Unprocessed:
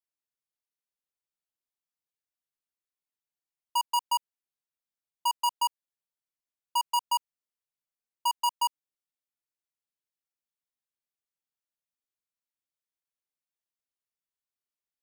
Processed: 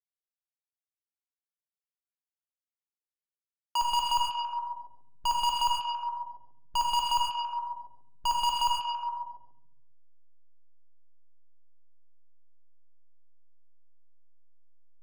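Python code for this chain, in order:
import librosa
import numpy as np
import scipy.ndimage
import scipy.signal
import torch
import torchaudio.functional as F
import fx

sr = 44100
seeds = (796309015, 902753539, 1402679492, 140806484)

p1 = fx.delta_hold(x, sr, step_db=-48.5)
p2 = fx.over_compress(p1, sr, threshold_db=-34.0, ratio=-0.5)
p3 = p1 + (p2 * librosa.db_to_amplitude(1.0))
p4 = np.clip(p3, -10.0 ** (-33.0 / 20.0), 10.0 ** (-33.0 / 20.0))
p5 = fx.graphic_eq_15(p4, sr, hz=(1600, 4000, 16000), db=(10, 9, -10))
p6 = fx.echo_stepped(p5, sr, ms=139, hz=3000.0, octaves=-0.7, feedback_pct=70, wet_db=0)
p7 = fx.rev_gated(p6, sr, seeds[0], gate_ms=150, shape='flat', drr_db=0.0)
y = p7 * librosa.db_to_amplitude(4.5)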